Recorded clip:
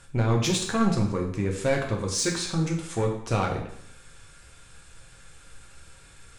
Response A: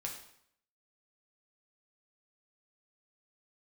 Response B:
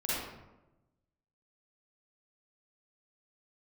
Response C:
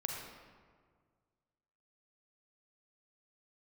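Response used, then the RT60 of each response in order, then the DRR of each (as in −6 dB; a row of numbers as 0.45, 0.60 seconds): A; 0.70, 1.0, 1.8 seconds; −0.5, −9.5, 0.0 decibels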